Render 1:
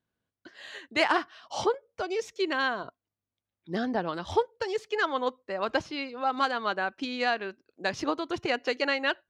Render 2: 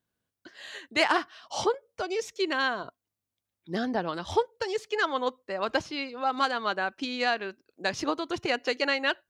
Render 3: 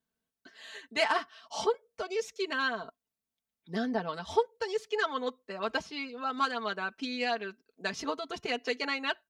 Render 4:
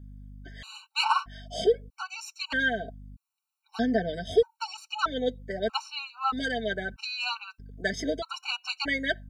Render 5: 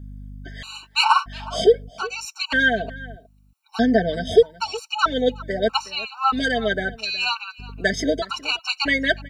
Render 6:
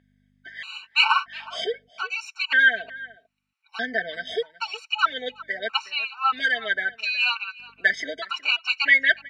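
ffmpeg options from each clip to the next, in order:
-af "highshelf=f=5.1k:g=6.5"
-af "aecho=1:1:4.5:0.81,volume=-6dB"
-af "aeval=exprs='val(0)+0.00316*(sin(2*PI*50*n/s)+sin(2*PI*2*50*n/s)/2+sin(2*PI*3*50*n/s)/3+sin(2*PI*4*50*n/s)/4+sin(2*PI*5*50*n/s)/5)':c=same,afftfilt=real='re*gt(sin(2*PI*0.79*pts/sr)*(1-2*mod(floor(b*sr/1024/760),2)),0)':imag='im*gt(sin(2*PI*0.79*pts/sr)*(1-2*mod(floor(b*sr/1024/760),2)),0)':win_size=1024:overlap=0.75,volume=6.5dB"
-filter_complex "[0:a]asplit=2[a][b];[b]adelay=367.3,volume=-19dB,highshelf=f=4k:g=-8.27[c];[a][c]amix=inputs=2:normalize=0,volume=8dB"
-af "bandpass=f=2.1k:t=q:w=2.2:csg=0,volume=6dB"

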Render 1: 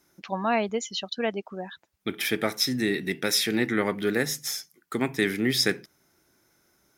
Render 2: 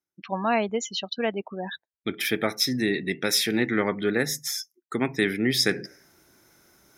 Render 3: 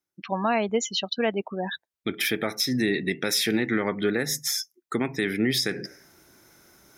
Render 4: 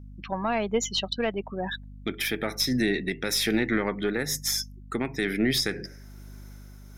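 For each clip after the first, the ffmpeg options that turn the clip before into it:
-af "afftdn=nr=34:nf=-44,areverse,acompressor=mode=upward:threshold=-29dB:ratio=2.5,areverse,volume=1dB"
-af "alimiter=limit=-17dB:level=0:latency=1:release=153,volume=3dB"
-af "aeval=exprs='val(0)+0.00794*(sin(2*PI*50*n/s)+sin(2*PI*2*50*n/s)/2+sin(2*PI*3*50*n/s)/3+sin(2*PI*4*50*n/s)/4+sin(2*PI*5*50*n/s)/5)':c=same,aeval=exprs='0.224*(cos(1*acos(clip(val(0)/0.224,-1,1)))-cos(1*PI/2))+0.0224*(cos(2*acos(clip(val(0)/0.224,-1,1)))-cos(2*PI/2))':c=same,tremolo=f=1.1:d=0.29"

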